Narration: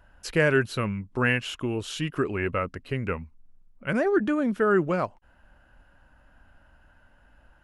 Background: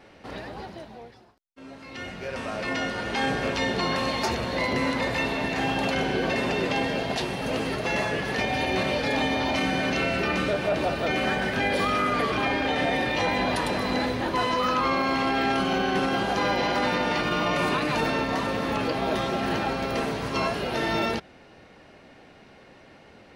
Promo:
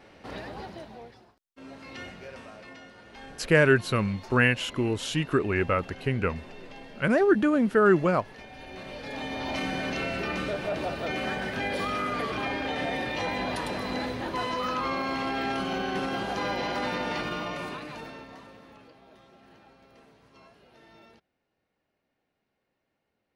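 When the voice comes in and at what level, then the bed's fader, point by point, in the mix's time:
3.15 s, +2.0 dB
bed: 0:01.89 −1.5 dB
0:02.82 −20 dB
0:08.54 −20 dB
0:09.56 −5.5 dB
0:17.21 −5.5 dB
0:19.05 −29 dB

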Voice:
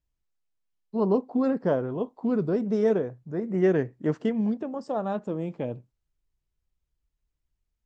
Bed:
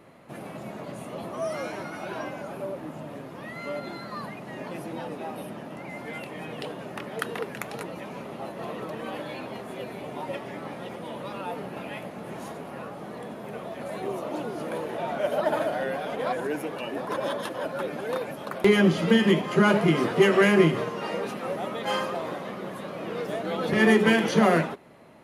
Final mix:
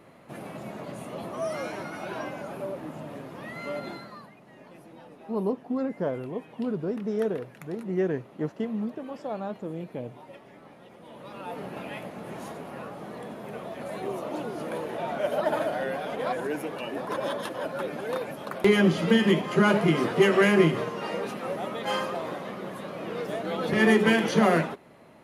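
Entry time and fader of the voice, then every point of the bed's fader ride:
4.35 s, −4.5 dB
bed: 0:03.91 −0.5 dB
0:04.30 −13.5 dB
0:10.90 −13.5 dB
0:11.64 −1 dB

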